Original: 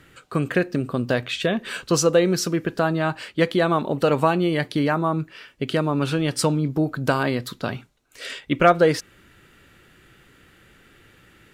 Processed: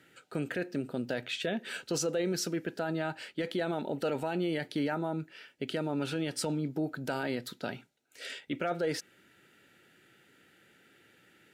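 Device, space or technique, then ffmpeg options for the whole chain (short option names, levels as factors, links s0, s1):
PA system with an anti-feedback notch: -af "highpass=180,asuperstop=centerf=1100:order=4:qfactor=3.8,alimiter=limit=0.178:level=0:latency=1:release=12,volume=0.398"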